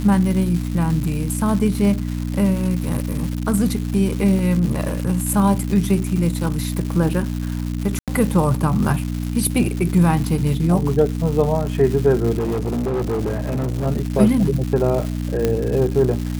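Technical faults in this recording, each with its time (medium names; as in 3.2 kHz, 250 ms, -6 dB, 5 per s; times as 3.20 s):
crackle 340 per s -25 dBFS
hum 60 Hz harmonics 5 -24 dBFS
4.39 s: dropout 2.1 ms
7.99–8.08 s: dropout 87 ms
12.38–13.87 s: clipped -18 dBFS
15.45 s: pop -6 dBFS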